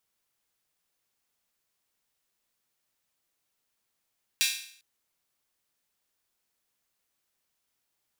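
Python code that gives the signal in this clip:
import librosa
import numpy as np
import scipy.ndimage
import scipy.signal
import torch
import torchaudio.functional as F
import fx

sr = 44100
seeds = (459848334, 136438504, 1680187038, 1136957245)

y = fx.drum_hat_open(sr, length_s=0.4, from_hz=2700.0, decay_s=0.58)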